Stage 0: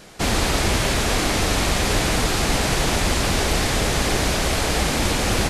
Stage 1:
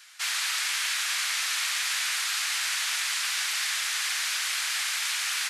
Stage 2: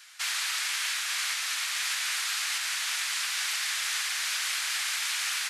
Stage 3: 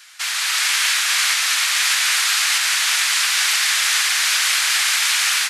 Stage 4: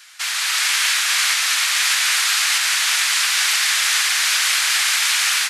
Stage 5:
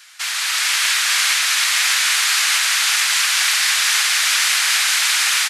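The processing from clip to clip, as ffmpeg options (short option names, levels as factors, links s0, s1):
-af "highpass=f=1400:w=0.5412,highpass=f=1400:w=1.3066,volume=0.708"
-af "alimiter=limit=0.106:level=0:latency=1:release=370"
-af "dynaudnorm=f=320:g=3:m=2,volume=2.11"
-af anull
-af "aecho=1:1:468:0.562"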